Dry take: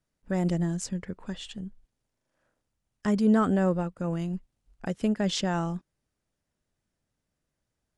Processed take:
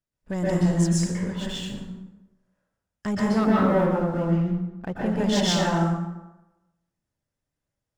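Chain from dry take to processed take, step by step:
0:03.25–0:05.06: low-pass filter 2,300 Hz
leveller curve on the samples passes 2
dense smooth reverb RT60 1 s, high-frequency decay 0.65×, pre-delay 110 ms, DRR −6.5 dB
level −6.5 dB

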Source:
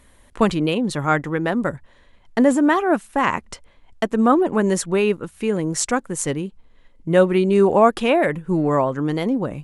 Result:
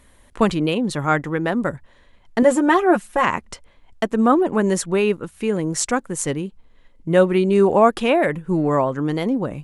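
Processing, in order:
0:02.42–0:03.25: comb filter 5.6 ms, depth 78%

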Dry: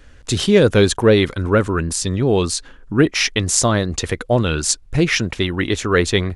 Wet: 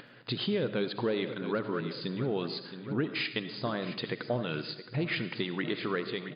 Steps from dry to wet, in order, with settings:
fade-out on the ending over 0.53 s
upward compression, threshold −31 dBFS
on a send: repeating echo 668 ms, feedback 33%, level −15 dB
on the sum: downward compressor 4 to 1, threshold −22 dBFS, peak gain reduction 12.5 dB
brick-wall band-pass 110–5,000 Hz
comb and all-pass reverb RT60 0.93 s, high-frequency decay 0.65×, pre-delay 35 ms, DRR 10.5 dB
level −7 dB

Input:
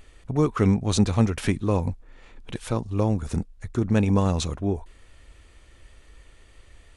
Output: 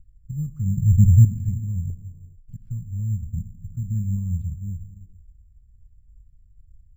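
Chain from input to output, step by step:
inverse Chebyshev band-stop filter 320–9,900 Hz, stop band 40 dB
0:00.77–0:01.25: bass and treble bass +12 dB, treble +12 dB
0:01.90–0:02.58: downward expander −37 dBFS
0:03.13–0:03.75: high-frequency loss of the air 390 metres
reverb whose tail is shaped and stops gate 460 ms flat, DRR 10.5 dB
bad sample-rate conversion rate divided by 6×, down filtered, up hold

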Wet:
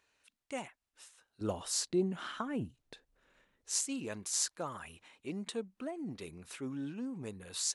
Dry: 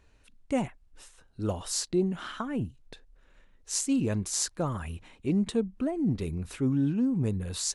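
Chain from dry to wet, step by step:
high-pass filter 1,200 Hz 6 dB per octave, from 0:01.41 200 Hz, from 0:03.81 810 Hz
level −3 dB

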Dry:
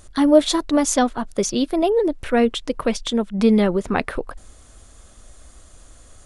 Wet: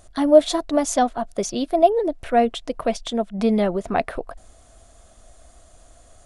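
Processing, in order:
parametric band 680 Hz +13 dB 0.32 octaves
level −4.5 dB

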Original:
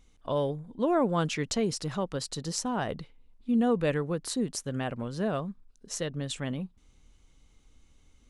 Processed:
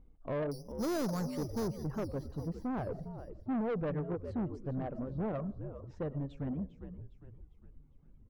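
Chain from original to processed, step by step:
in parallel at −11 dB: hard clipping −29 dBFS, distortion −7 dB
on the sum: Bessel low-pass filter 550 Hz, order 2
on a send at −10 dB: convolution reverb RT60 0.45 s, pre-delay 60 ms
0:00.52–0:01.68: on the sum: bad sample-rate conversion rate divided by 8×, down filtered, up hold
reverb reduction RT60 1.5 s
echo with shifted repeats 404 ms, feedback 47%, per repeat −73 Hz, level −12.5 dB
soft clipping −30.5 dBFS, distortion −9 dB
wow of a warped record 78 rpm, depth 160 cents

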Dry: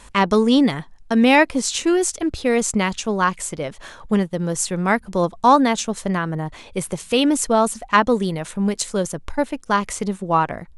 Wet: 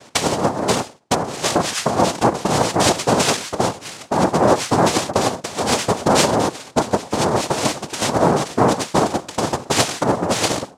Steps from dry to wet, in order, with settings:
high shelf with overshoot 3,000 Hz −7 dB, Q 1.5
reverb whose tail is shaped and stops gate 160 ms falling, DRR 9 dB
compressor whose output falls as the input rises −19 dBFS, ratio −0.5
cochlear-implant simulation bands 2
one half of a high-frequency compander decoder only
level +3.5 dB

